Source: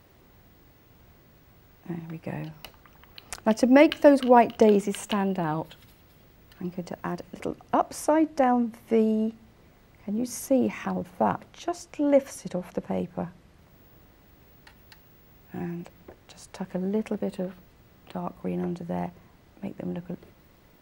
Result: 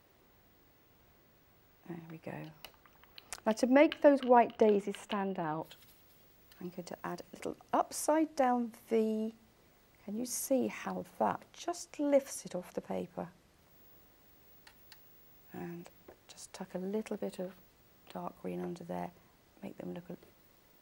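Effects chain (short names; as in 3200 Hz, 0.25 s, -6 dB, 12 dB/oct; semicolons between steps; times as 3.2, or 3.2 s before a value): tone controls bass -6 dB, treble +1 dB, from 3.73 s treble -9 dB, from 5.61 s treble +6 dB; gain -7 dB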